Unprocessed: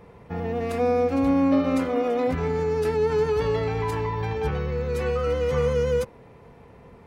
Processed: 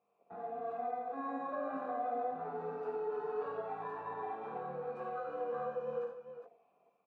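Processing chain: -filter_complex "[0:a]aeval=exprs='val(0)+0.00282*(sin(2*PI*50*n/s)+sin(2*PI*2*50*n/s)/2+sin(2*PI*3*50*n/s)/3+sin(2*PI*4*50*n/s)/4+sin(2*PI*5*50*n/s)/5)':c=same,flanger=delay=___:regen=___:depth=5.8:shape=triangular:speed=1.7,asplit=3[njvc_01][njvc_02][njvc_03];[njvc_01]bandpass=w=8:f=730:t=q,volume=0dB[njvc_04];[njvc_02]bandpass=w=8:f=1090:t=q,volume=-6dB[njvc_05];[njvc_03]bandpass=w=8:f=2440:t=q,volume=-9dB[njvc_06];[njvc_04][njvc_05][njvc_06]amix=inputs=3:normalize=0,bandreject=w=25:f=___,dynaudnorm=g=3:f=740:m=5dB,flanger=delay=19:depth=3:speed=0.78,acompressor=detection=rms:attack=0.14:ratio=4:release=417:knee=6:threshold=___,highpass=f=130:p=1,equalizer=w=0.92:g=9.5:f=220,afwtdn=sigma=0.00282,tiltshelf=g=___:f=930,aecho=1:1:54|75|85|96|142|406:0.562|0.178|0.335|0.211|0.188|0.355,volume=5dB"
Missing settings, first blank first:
0.1, 45, 6500, -40dB, -4.5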